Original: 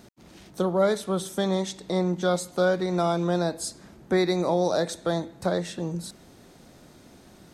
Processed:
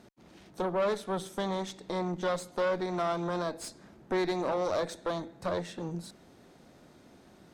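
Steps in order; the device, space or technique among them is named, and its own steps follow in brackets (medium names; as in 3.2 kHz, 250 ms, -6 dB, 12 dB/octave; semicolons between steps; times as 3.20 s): tube preamp driven hard (valve stage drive 23 dB, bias 0.65; bass shelf 140 Hz -6 dB; treble shelf 4.2 kHz -8.5 dB)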